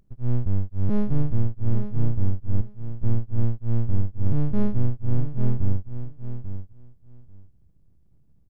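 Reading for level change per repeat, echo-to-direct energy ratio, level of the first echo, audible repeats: -16.5 dB, -9.5 dB, -9.5 dB, 2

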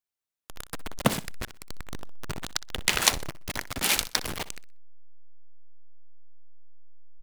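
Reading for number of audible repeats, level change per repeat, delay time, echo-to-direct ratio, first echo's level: 2, -11.5 dB, 62 ms, -16.5 dB, -17.0 dB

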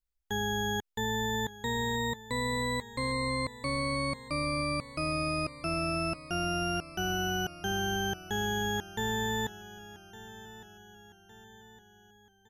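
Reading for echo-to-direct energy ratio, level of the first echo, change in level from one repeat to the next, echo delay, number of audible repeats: -16.0 dB, -17.0 dB, -6.0 dB, 1160 ms, 3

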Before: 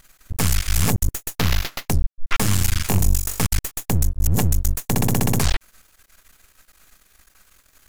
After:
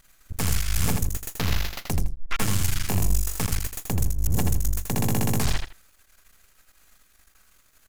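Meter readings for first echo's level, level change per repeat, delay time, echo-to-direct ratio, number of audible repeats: -5.0 dB, -14.0 dB, 81 ms, -5.0 dB, 2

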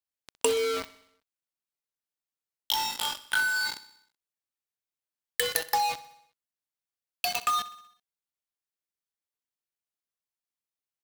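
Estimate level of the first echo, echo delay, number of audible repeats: -17.0 dB, 63 ms, 4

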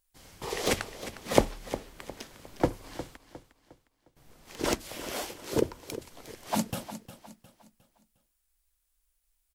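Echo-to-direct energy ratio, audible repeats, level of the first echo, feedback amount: -12.5 dB, 3, -13.0 dB, 37%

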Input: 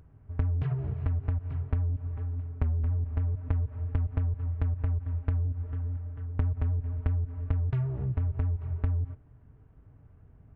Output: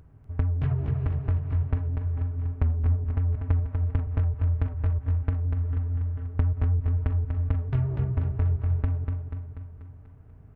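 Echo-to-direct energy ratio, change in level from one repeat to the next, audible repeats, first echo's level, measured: -4.5 dB, -5.0 dB, 6, -6.0 dB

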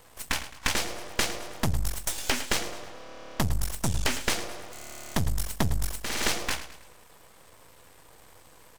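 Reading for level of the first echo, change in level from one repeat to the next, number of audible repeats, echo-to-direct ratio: -13.5 dB, -7.5 dB, 3, -12.5 dB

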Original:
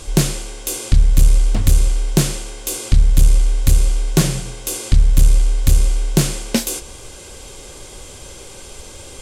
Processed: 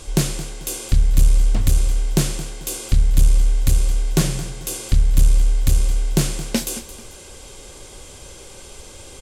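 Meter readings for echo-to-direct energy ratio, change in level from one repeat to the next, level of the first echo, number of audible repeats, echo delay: -14.5 dB, -9.0 dB, -15.0 dB, 2, 220 ms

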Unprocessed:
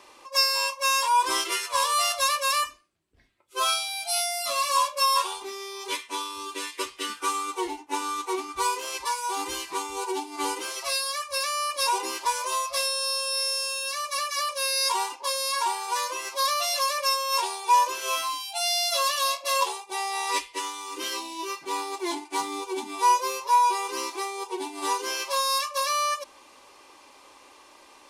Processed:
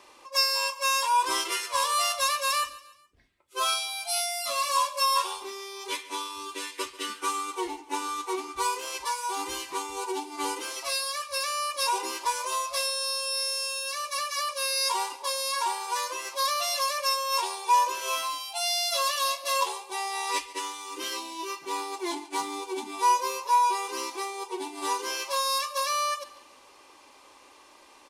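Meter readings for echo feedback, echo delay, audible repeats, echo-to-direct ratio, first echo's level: 43%, 141 ms, 3, -17.5 dB, -18.5 dB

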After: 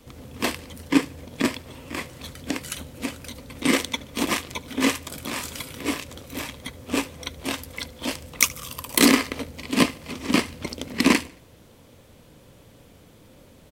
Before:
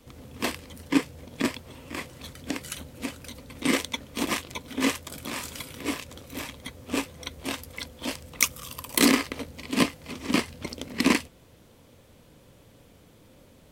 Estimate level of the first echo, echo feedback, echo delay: -22.0 dB, 44%, 74 ms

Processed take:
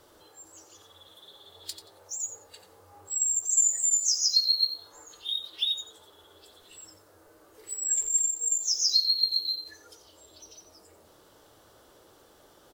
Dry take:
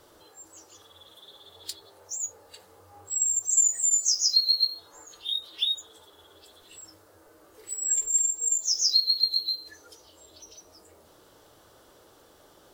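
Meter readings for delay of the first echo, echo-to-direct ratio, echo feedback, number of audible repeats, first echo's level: 89 ms, -11.0 dB, 18%, 2, -11.0 dB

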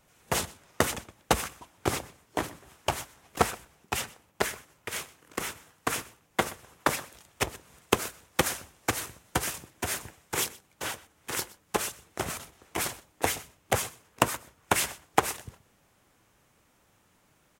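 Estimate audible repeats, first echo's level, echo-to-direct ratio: 1, -21.0 dB, -21.0 dB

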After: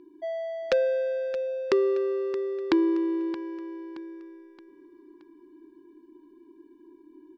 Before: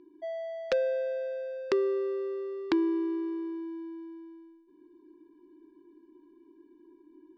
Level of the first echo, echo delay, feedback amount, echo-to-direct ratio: -14.0 dB, 623 ms, 44%, -13.0 dB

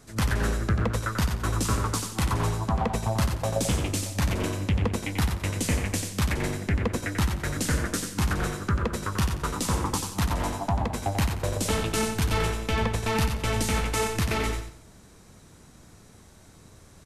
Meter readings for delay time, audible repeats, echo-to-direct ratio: 90 ms, 3, -5.5 dB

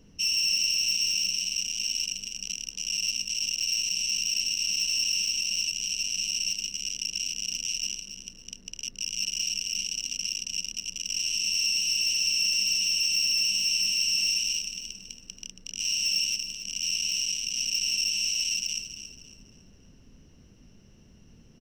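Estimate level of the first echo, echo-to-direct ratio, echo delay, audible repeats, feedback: -10.5 dB, -10.0 dB, 277 ms, 3, 35%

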